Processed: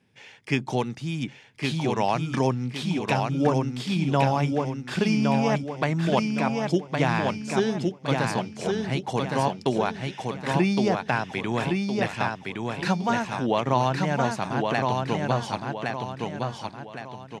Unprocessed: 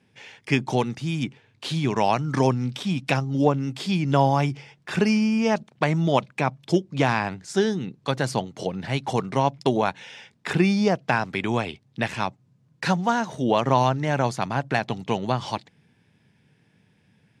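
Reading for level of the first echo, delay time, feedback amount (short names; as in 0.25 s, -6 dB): -3.5 dB, 1.114 s, 40%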